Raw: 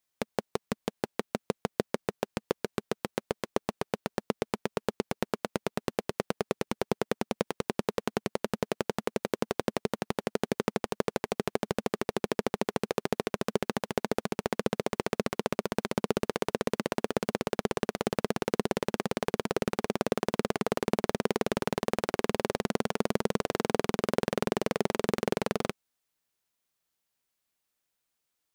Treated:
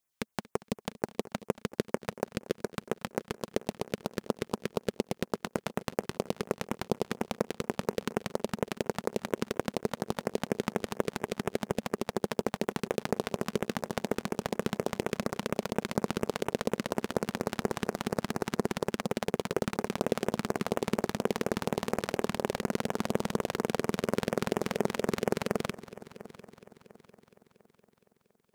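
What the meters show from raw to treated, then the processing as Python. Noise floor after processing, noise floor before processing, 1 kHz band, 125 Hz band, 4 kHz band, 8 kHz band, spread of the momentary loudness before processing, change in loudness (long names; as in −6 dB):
−73 dBFS, −83 dBFS, −2.0 dB, 0.0 dB, −1.5 dB, −0.5 dB, 5 LU, −1.5 dB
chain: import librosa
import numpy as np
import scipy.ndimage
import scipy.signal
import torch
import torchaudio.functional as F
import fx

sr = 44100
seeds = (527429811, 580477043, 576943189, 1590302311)

y = fx.filter_lfo_notch(x, sr, shape='sine', hz=4.2, low_hz=340.0, high_hz=4600.0, q=0.99)
y = fx.echo_heads(y, sr, ms=233, heads='first and third', feedback_pct=55, wet_db=-20.0)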